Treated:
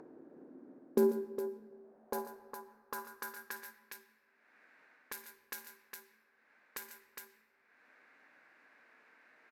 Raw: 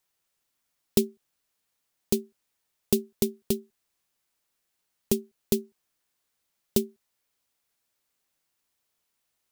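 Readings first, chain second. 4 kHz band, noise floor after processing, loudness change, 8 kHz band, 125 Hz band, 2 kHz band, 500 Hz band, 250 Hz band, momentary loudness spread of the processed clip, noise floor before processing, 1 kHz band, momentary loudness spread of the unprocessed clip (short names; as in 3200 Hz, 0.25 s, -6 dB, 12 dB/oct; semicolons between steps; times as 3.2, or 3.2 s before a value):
-16.0 dB, -73 dBFS, -11.0 dB, -15.0 dB, -18.5 dB, +5.5 dB, -5.5 dB, -11.0 dB, 23 LU, -79 dBFS, +7.5 dB, 5 LU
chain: low-pass opened by the level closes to 420 Hz, open at -22.5 dBFS; reverse; compressor, threshold -32 dBFS, peak gain reduction 15 dB; reverse; soft clip -36 dBFS, distortion -8 dB; thirty-one-band EQ 250 Hz +11 dB, 1600 Hz +10 dB, 3150 Hz -10 dB, 12500 Hz +12 dB; limiter -37.5 dBFS, peak gain reduction 10.5 dB; on a send: tapped delay 53/117/142/410 ms -12.5/-18.5/-13/-9.5 dB; on the sum: high-pass sweep 330 Hz -> 2200 Hz, 1.02–3.97; tilt shelf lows +5 dB; upward compressor, threshold -53 dBFS; shoebox room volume 1800 m³, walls mixed, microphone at 0.48 m; gain +13.5 dB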